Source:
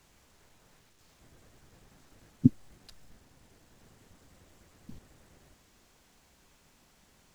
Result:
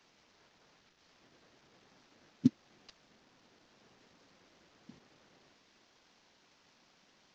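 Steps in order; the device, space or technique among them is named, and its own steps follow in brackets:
early wireless headset (high-pass filter 210 Hz 12 dB per octave; variable-slope delta modulation 32 kbit/s)
level −2.5 dB

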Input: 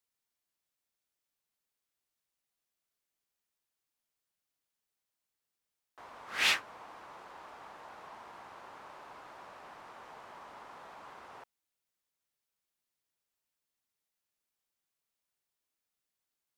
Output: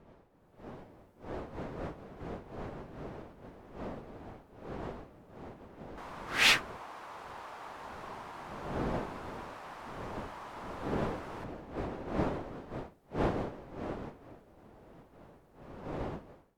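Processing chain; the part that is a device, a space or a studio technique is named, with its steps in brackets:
smartphone video outdoors (wind on the microphone 570 Hz −46 dBFS; automatic gain control gain up to 11 dB; level −6.5 dB; AAC 96 kbit/s 48,000 Hz)

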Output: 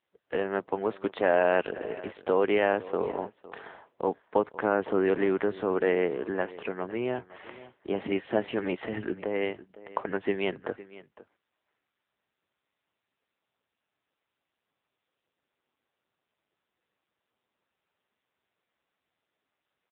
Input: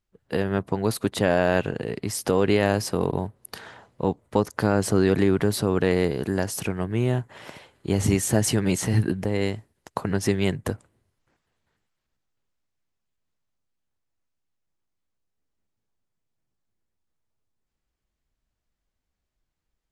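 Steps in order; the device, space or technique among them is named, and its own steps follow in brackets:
satellite phone (band-pass filter 380–3,100 Hz; single-tap delay 508 ms −18 dB; AMR narrowband 6.7 kbit/s 8,000 Hz)

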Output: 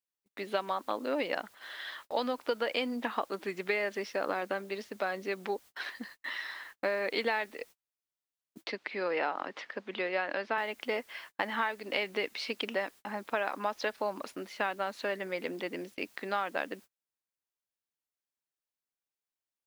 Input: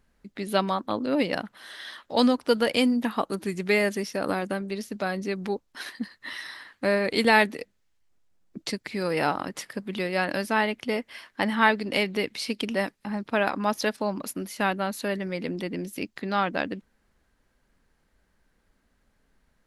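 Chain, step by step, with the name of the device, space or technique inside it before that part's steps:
baby monitor (band-pass filter 440–3,500 Hz; downward compressor 10 to 1, threshold −27 dBFS, peak gain reduction 13.5 dB; white noise bed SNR 27 dB; noise gate −49 dBFS, range −34 dB)
0:08.64–0:10.58: three-way crossover with the lows and the highs turned down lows −16 dB, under 150 Hz, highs −24 dB, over 5,000 Hz

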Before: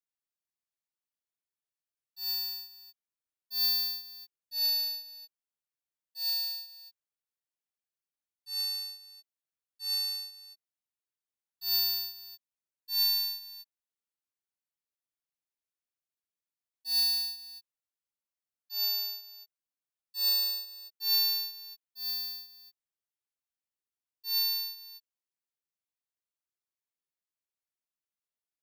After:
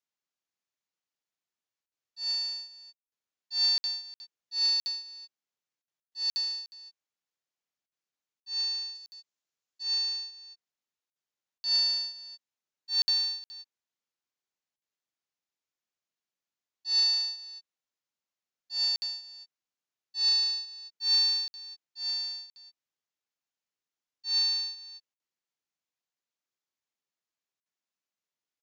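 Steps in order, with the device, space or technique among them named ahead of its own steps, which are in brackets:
call with lost packets (high-pass filter 120 Hz 12 dB per octave; downsampling to 16,000 Hz; dropped packets of 60 ms random)
0:08.95–0:09.83: high-shelf EQ 6,800 Hz +10 dB
0:17.04–0:17.45: high-pass filter 550 Hz 24 dB per octave
level +3 dB

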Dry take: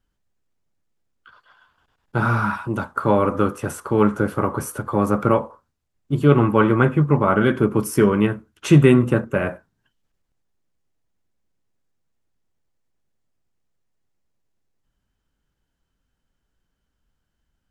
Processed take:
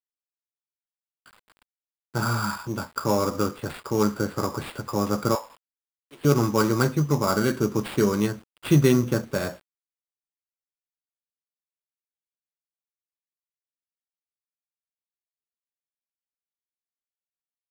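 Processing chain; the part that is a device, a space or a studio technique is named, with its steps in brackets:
0:05.35–0:06.25: Chebyshev band-pass filter 830–5,500 Hz, order 2
early 8-bit sampler (sample-rate reduction 6,100 Hz, jitter 0%; bit reduction 8 bits)
level −5.5 dB

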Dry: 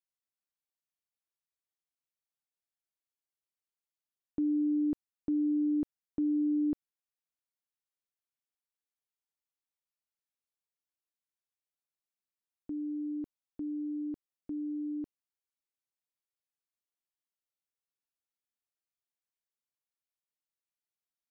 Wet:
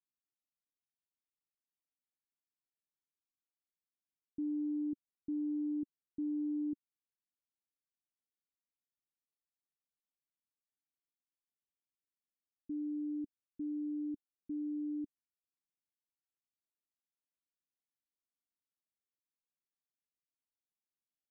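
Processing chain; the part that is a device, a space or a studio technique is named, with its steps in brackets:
overdriven synthesiser ladder filter (soft clipping −34.5 dBFS, distortion −10 dB; transistor ladder low-pass 340 Hz, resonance 50%)
level +2.5 dB

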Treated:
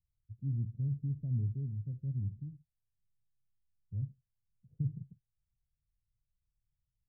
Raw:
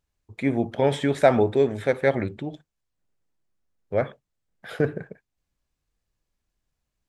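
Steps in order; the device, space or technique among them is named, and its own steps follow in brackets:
the neighbour's flat through the wall (low-pass filter 150 Hz 24 dB per octave; parametric band 120 Hz +6 dB 0.42 octaves)
level −4.5 dB

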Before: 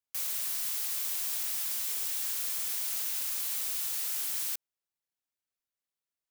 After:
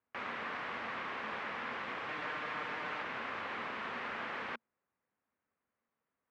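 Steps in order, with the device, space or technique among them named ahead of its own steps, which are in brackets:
bass cabinet (loudspeaker in its box 60–2,000 Hz, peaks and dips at 230 Hz +9 dB, 490 Hz +4 dB, 1,100 Hz +4 dB)
0:02.08–0:03.02: comb filter 6.6 ms, depth 56%
level +11.5 dB

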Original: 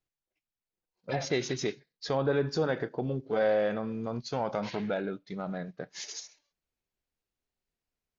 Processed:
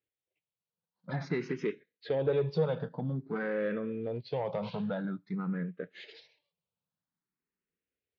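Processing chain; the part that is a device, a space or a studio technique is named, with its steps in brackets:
barber-pole phaser into a guitar amplifier (frequency shifter mixed with the dry sound +0.5 Hz; soft clipping −23.5 dBFS, distortion −18 dB; loudspeaker in its box 95–3,700 Hz, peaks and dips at 110 Hz +3 dB, 170 Hz +10 dB, 470 Hz +5 dB, 720 Hz −5 dB)

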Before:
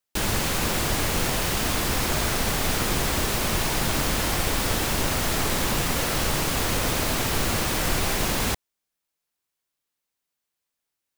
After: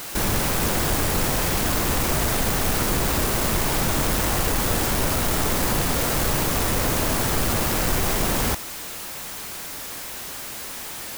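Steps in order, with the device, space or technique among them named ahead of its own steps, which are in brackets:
early CD player with a faulty converter (converter with a step at zero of −25.5 dBFS; converter with an unsteady clock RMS 0.083 ms)

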